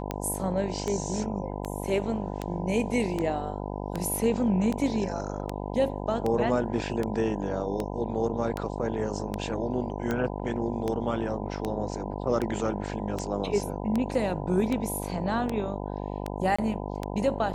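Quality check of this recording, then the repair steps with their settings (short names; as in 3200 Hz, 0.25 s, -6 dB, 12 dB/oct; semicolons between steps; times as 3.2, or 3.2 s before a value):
buzz 50 Hz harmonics 20 -34 dBFS
tick 78 rpm -16 dBFS
16.56–16.59 gap 25 ms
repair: de-click; de-hum 50 Hz, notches 20; interpolate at 16.56, 25 ms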